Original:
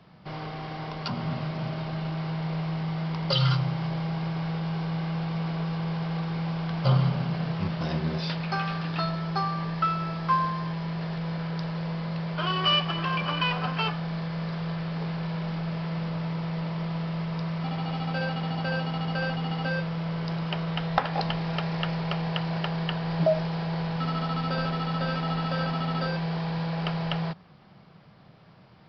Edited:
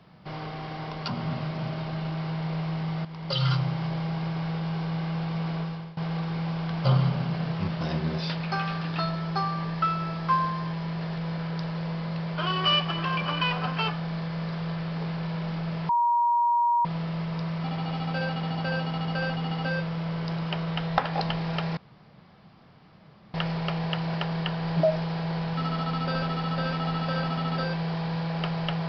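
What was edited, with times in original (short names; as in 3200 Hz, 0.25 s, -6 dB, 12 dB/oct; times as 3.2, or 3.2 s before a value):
3.05–3.57 fade in, from -12.5 dB
5.57–5.97 fade out, to -21 dB
15.89–16.85 bleep 950 Hz -19.5 dBFS
21.77 insert room tone 1.57 s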